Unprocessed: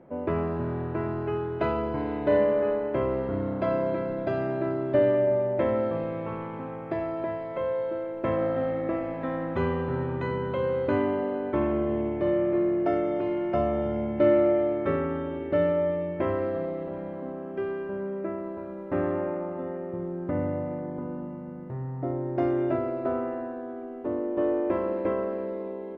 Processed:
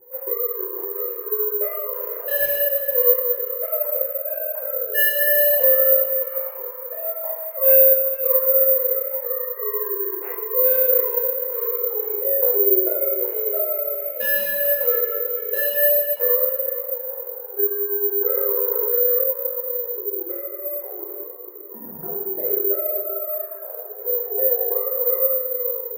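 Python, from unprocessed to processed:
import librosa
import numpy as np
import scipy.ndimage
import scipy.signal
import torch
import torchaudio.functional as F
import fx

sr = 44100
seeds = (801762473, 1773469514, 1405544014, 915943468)

y = fx.sine_speech(x, sr)
y = fx.lowpass(y, sr, hz=2400.0, slope=6)
y = 10.0 ** (-20.0 / 20.0) * (np.abs((y / 10.0 ** (-20.0 / 20.0) + 3.0) % 4.0 - 2.0) - 1.0)
y = fx.echo_feedback(y, sr, ms=452, feedback_pct=23, wet_db=-12.0)
y = fx.rev_double_slope(y, sr, seeds[0], early_s=0.87, late_s=2.3, knee_db=-18, drr_db=-8.0)
y = (np.kron(y[::3], np.eye(3)[0]) * 3)[:len(y)]
y = fx.env_flatten(y, sr, amount_pct=70, at=(18.21, 19.24))
y = y * librosa.db_to_amplitude(-6.5)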